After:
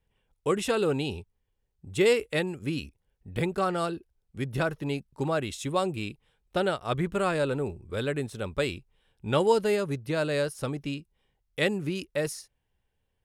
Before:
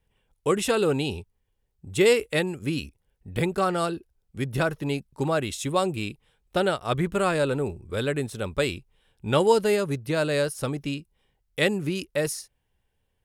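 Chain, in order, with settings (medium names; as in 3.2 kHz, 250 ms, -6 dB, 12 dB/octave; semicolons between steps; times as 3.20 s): treble shelf 7.7 kHz -5.5 dB; trim -3 dB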